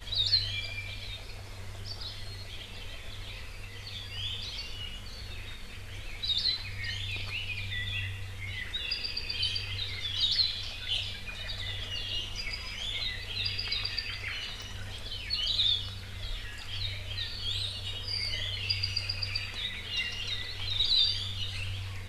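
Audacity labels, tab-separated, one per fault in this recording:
14.620000	14.620000	pop

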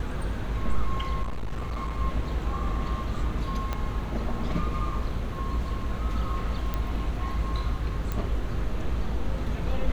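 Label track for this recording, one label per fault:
1.220000	1.980000	clipped -27 dBFS
3.730000	3.730000	pop -16 dBFS
6.740000	6.740000	pop -16 dBFS
8.120000	8.120000	pop -17 dBFS

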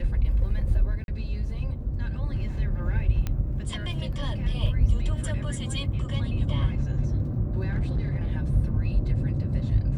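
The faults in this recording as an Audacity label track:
1.040000	1.080000	gap 41 ms
3.270000	3.270000	pop -16 dBFS
7.690000	8.320000	clipped -22 dBFS

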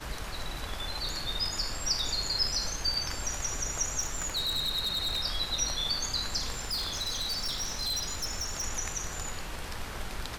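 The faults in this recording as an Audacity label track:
3.990000	5.210000	clipped -26.5 dBFS
6.530000	8.630000	clipped -28.5 dBFS

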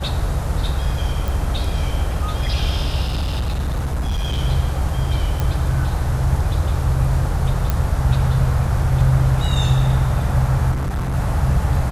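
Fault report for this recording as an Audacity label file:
1.280000	1.280000	pop
3.050000	4.390000	clipped -17.5 dBFS
5.400000	5.400000	pop
7.700000	7.700000	pop -6 dBFS
10.710000	11.150000	clipped -19 dBFS

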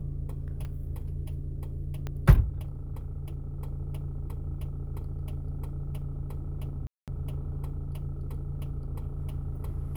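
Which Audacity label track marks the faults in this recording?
0.650000	0.650000	pop -28 dBFS
2.070000	2.070000	pop -22 dBFS
6.870000	7.080000	gap 0.207 s

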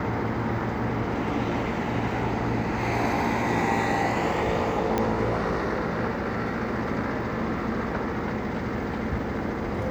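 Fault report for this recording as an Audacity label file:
4.980000	4.980000	pop -11 dBFS

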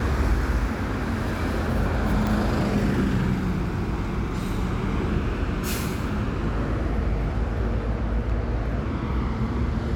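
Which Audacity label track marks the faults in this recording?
2.270000	2.270000	pop

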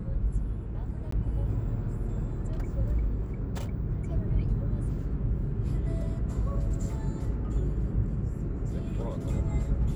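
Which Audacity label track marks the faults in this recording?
1.110000	1.120000	gap 14 ms

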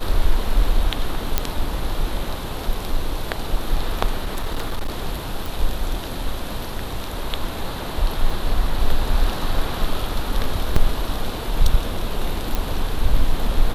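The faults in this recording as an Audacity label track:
1.380000	1.380000	pop -2 dBFS
4.190000	4.900000	clipped -19 dBFS
5.460000	5.460000	pop
8.300000	8.300000	gap 3 ms
10.760000	10.760000	gap 3.8 ms
12.550000	12.550000	pop

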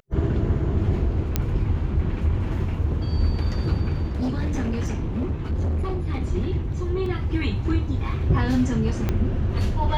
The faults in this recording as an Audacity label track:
1.360000	1.360000	pop -7 dBFS
4.160000	6.180000	clipped -21 dBFS
7.060000	7.060000	gap 2.6 ms
9.090000	9.090000	pop -11 dBFS

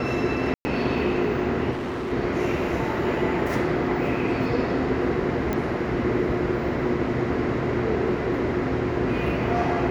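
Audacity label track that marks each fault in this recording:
0.540000	0.650000	gap 0.11 s
1.710000	2.130000	clipped -26.5 dBFS
5.530000	5.530000	pop -13 dBFS

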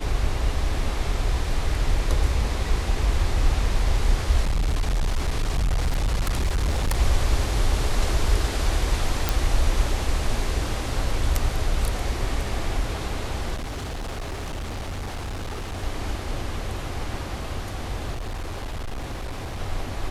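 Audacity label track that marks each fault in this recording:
4.420000	6.990000	clipped -19 dBFS
9.290000	9.290000	pop
13.550000	15.840000	clipped -27.5 dBFS
18.120000	19.610000	clipped -27 dBFS

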